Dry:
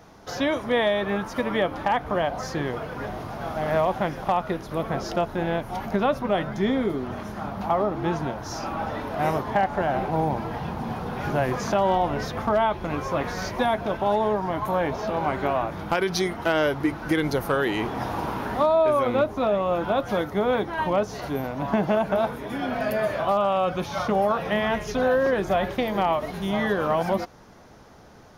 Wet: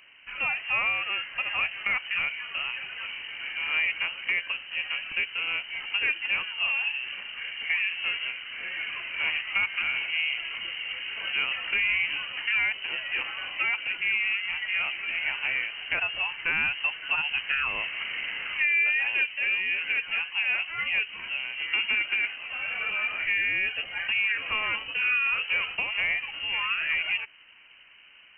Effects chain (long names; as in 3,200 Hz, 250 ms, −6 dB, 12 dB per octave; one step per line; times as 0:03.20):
voice inversion scrambler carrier 3,000 Hz
level −4.5 dB